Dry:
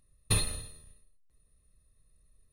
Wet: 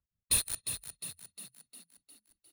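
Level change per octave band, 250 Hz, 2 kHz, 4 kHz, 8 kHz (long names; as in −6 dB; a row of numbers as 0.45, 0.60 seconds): −9.5, −2.5, −0.5, +4.0 decibels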